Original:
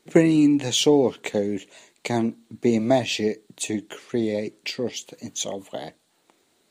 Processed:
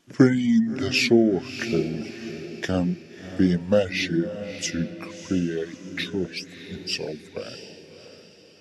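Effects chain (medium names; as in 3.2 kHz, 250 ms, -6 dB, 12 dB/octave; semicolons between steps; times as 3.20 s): reverb removal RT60 1.9 s; echo that smears into a reverb 497 ms, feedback 43%, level -11.5 dB; tape speed -22%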